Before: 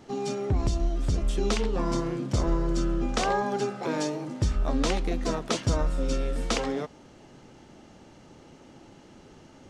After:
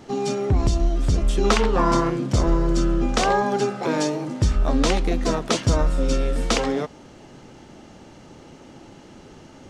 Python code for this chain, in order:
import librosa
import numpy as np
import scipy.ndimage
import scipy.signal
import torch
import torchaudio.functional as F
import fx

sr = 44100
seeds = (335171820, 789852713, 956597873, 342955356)

p1 = fx.peak_eq(x, sr, hz=1200.0, db=8.5, octaves=1.7, at=(1.44, 2.1))
p2 = np.clip(p1, -10.0 ** (-18.5 / 20.0), 10.0 ** (-18.5 / 20.0))
p3 = p1 + F.gain(torch.from_numpy(p2), -5.5).numpy()
y = F.gain(torch.from_numpy(p3), 2.5).numpy()